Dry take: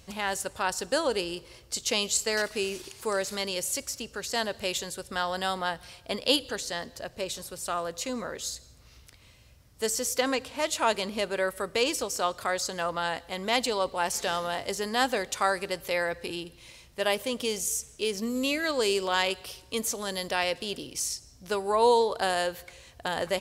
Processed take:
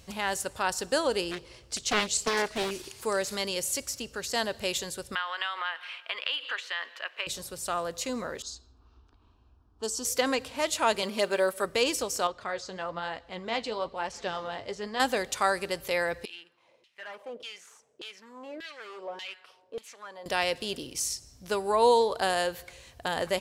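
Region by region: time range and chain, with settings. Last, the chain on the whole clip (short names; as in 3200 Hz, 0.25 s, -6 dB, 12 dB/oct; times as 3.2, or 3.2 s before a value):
1.31–2.71 bell 13000 Hz -10.5 dB 0.49 oct + Doppler distortion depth 0.71 ms
5.15–7.27 Bessel high-pass 590 Hz, order 8 + compressor, threshold -34 dBFS + EQ curve 140 Hz 0 dB, 380 Hz -5 dB, 750 Hz -3 dB, 1100 Hz +9 dB, 2900 Hz +12 dB, 4800 Hz -8 dB, 9600 Hz -16 dB
8.42–10.05 LPF 7700 Hz + low-pass opened by the level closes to 1500 Hz, open at -29 dBFS + fixed phaser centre 550 Hz, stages 6
11.02–11.65 HPF 320 Hz 6 dB/oct + comb 5.1 ms, depth 79% + companded quantiser 8-bit
12.27–15 flange 1.1 Hz, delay 1.5 ms, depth 9.6 ms, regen +57% + air absorption 120 m
16.25–20.26 HPF 110 Hz + overloaded stage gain 29 dB + LFO band-pass saw down 1.7 Hz 410–3600 Hz
whole clip: dry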